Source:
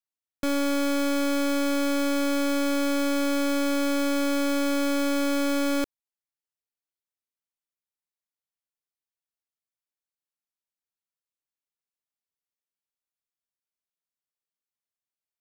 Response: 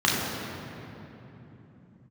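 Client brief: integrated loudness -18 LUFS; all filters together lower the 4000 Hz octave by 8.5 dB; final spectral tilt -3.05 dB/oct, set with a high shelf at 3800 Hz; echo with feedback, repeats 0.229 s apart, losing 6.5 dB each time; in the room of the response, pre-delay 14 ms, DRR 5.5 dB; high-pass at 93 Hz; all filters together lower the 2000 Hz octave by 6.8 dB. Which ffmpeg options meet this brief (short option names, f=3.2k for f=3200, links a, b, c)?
-filter_complex "[0:a]highpass=93,equalizer=f=2k:t=o:g=-7,highshelf=f=3.8k:g=-3.5,equalizer=f=4k:t=o:g=-6.5,aecho=1:1:229|458|687|916|1145|1374:0.473|0.222|0.105|0.0491|0.0231|0.0109,asplit=2[a][b];[1:a]atrim=start_sample=2205,adelay=14[c];[b][c]afir=irnorm=-1:irlink=0,volume=-23dB[d];[a][d]amix=inputs=2:normalize=0,volume=10dB"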